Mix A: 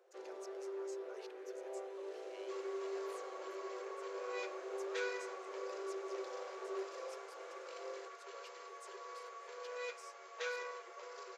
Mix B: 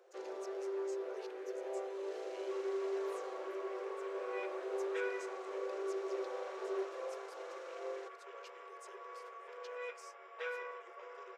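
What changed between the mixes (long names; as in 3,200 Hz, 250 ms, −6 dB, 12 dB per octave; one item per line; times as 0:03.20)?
first sound +4.5 dB
second sound: add Savitzky-Golay smoothing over 25 samples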